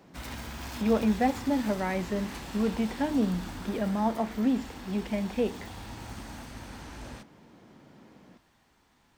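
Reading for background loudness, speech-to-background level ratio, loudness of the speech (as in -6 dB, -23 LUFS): -41.5 LUFS, 12.0 dB, -29.5 LUFS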